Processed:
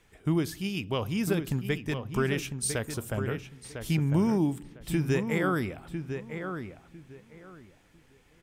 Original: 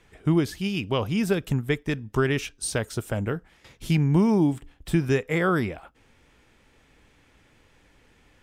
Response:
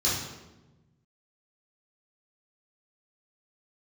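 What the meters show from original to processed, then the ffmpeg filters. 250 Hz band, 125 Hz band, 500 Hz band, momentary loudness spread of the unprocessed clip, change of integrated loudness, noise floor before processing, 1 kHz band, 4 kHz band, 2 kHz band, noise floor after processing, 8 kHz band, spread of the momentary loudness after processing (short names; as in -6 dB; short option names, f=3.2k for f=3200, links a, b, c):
-4.5 dB, -4.0 dB, -4.5 dB, 10 LU, -5.0 dB, -60 dBFS, -4.5 dB, -3.5 dB, -4.0 dB, -61 dBFS, -0.5 dB, 14 LU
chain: -filter_complex "[0:a]highshelf=f=8.7k:g=10,asplit=2[a][b];[b]adelay=1002,lowpass=f=2.7k:p=1,volume=-7.5dB,asplit=2[c][d];[d]adelay=1002,lowpass=f=2.7k:p=1,volume=0.21,asplit=2[e][f];[f]adelay=1002,lowpass=f=2.7k:p=1,volume=0.21[g];[a][c][e][g]amix=inputs=4:normalize=0,asplit=2[h][i];[1:a]atrim=start_sample=2205,lowpass=3k[j];[i][j]afir=irnorm=-1:irlink=0,volume=-32.5dB[k];[h][k]amix=inputs=2:normalize=0,volume=-5dB"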